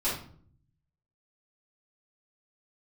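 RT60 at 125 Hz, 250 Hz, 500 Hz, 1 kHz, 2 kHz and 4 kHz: 1.2, 0.85, 0.60, 0.50, 0.40, 0.35 s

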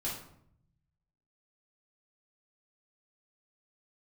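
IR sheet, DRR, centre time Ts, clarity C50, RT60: -7.0 dB, 40 ms, 3.5 dB, 0.70 s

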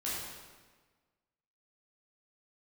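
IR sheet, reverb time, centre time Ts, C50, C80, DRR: 1.4 s, 95 ms, -1.5 dB, 1.0 dB, -8.5 dB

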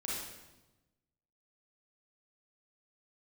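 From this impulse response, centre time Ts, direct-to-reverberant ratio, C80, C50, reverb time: 83 ms, -6.0 dB, 2.0 dB, -2.5 dB, 1.1 s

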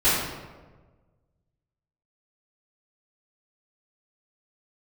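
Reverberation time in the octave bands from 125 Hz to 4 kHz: 1.9, 1.5, 1.5, 1.2, 1.0, 0.75 s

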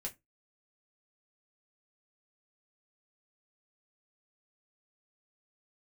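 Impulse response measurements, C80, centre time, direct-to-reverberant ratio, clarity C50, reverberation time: 29.5 dB, 11 ms, -0.5 dB, 19.5 dB, not exponential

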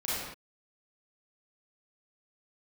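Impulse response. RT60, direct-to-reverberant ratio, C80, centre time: not exponential, -10.0 dB, 0.0 dB, 94 ms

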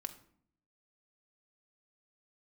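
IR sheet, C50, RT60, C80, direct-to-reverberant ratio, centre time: 13.5 dB, 0.60 s, 16.5 dB, 6.0 dB, 7 ms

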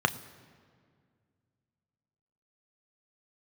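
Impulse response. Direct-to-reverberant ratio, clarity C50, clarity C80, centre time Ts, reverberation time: 9.5 dB, 17.0 dB, 17.5 dB, 6 ms, 2.0 s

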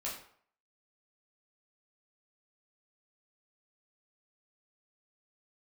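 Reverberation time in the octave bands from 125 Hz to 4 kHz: 0.50, 0.50, 0.55, 0.60, 0.50, 0.40 s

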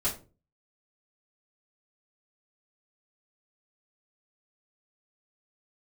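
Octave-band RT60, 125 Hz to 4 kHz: 0.55, 0.45, 0.40, 0.30, 0.25, 0.20 s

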